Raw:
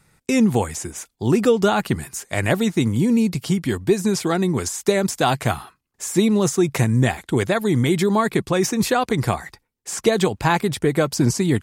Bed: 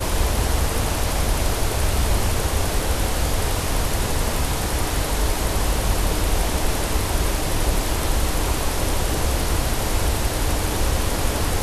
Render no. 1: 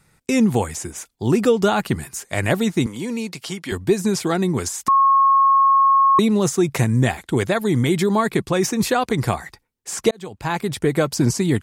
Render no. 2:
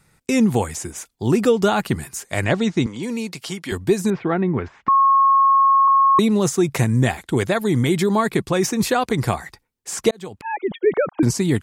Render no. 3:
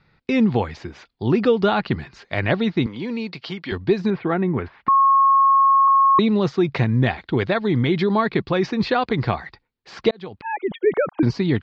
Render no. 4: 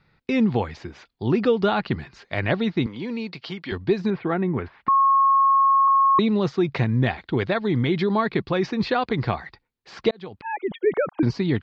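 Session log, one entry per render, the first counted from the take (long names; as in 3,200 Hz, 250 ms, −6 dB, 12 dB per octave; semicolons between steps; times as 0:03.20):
0:02.86–0:03.72: meter weighting curve A; 0:04.88–0:06.19: beep over 1,090 Hz −11 dBFS; 0:10.11–0:10.84: fade in
0:02.44–0:03.03: low-pass filter 6,700 Hz 24 dB per octave; 0:04.10–0:05.88: low-pass filter 2,400 Hz 24 dB per octave; 0:10.41–0:11.23: three sine waves on the formant tracks
elliptic low-pass filter 4,500 Hz, stop band 60 dB
level −2.5 dB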